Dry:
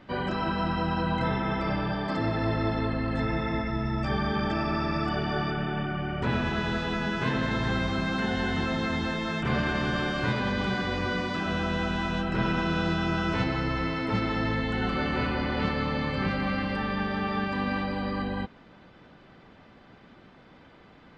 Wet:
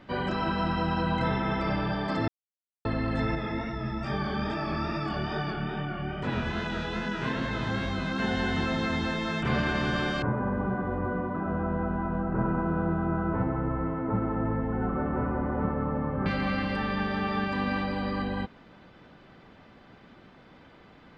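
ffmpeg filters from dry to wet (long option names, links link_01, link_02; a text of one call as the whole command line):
ffmpeg -i in.wav -filter_complex "[0:a]asettb=1/sr,asplit=3[link_01][link_02][link_03];[link_01]atrim=end=3.354[link_04];[link_02]atrim=start=3.35:end=8.2,asetpts=PTS-STARTPTS,afade=type=in:duration=0.004:curve=qsin,afade=type=out:start_time=4.846:duration=0.004:curve=qsin,flanger=delay=20:depth=6.8:speed=2.4[link_05];[link_03]atrim=start=8.196[link_06];[link_04][link_05]acrossfade=duration=0.004:curve1=hsin:curve2=qsin[link_07];[link_07][link_06]acrossfade=duration=0.004:curve1=qsin:curve2=hsin,asettb=1/sr,asplit=3[link_08][link_09][link_10];[link_08]atrim=end=10.224[link_11];[link_09]atrim=start=10.22:end=16.26,asetpts=PTS-STARTPTS,afade=type=in:duration=0.004:curve=qsin,afade=type=out:start_time=6.036:duration=0.004:curve=qsin,lowpass=frequency=1300:width=0.5412,lowpass=frequency=1300:width=1.3066[link_12];[link_10]atrim=start=16.256[link_13];[link_11][link_12]acrossfade=duration=0.004:curve1=hsin:curve2=qsin[link_14];[link_14][link_13]acrossfade=duration=0.004:curve1=qsin:curve2=hsin,asplit=3[link_15][link_16][link_17];[link_15]atrim=end=2.28,asetpts=PTS-STARTPTS,afade=type=out:start_time=2.276:duration=0.004:curve=hsin[link_18];[link_16]atrim=start=2.28:end=2.85,asetpts=PTS-STARTPTS,volume=0[link_19];[link_17]atrim=start=2.85,asetpts=PTS-STARTPTS,afade=type=in:duration=0.004:curve=hsin[link_20];[link_18][link_19][link_20]concat=n=3:v=0:a=1" out.wav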